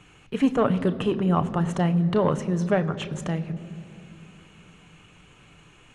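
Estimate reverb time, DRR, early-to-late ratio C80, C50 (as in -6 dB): 2.8 s, 9.0 dB, 16.0 dB, 15.5 dB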